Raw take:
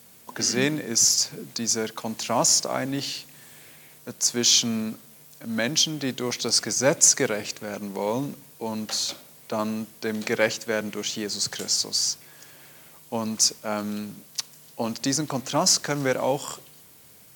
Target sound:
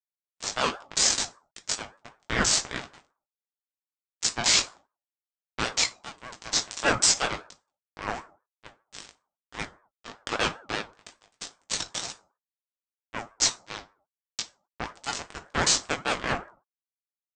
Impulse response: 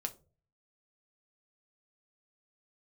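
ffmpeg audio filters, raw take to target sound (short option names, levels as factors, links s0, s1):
-filter_complex "[0:a]aresample=16000,acrusher=bits=2:mix=0:aa=0.5,aresample=44100,flanger=delay=17.5:depth=2.1:speed=1.4,dynaudnorm=f=370:g=3:m=1.68[s0];[1:a]atrim=start_sample=2205,afade=t=out:st=0.31:d=0.01,atrim=end_sample=14112[s1];[s0][s1]afir=irnorm=-1:irlink=0,aeval=exprs='val(0)*sin(2*PI*910*n/s+910*0.25/5.1*sin(2*PI*5.1*n/s))':c=same"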